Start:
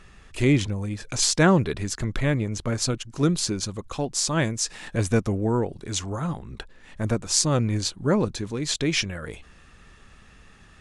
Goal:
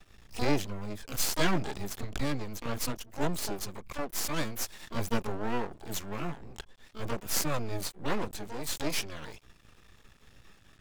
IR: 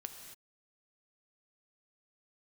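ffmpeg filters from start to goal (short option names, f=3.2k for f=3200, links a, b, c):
-filter_complex "[0:a]aeval=exprs='max(val(0),0)':c=same,asplit=2[a][b];[b]asetrate=88200,aresample=44100,atempo=0.5,volume=-3dB[c];[a][c]amix=inputs=2:normalize=0,volume=-5.5dB"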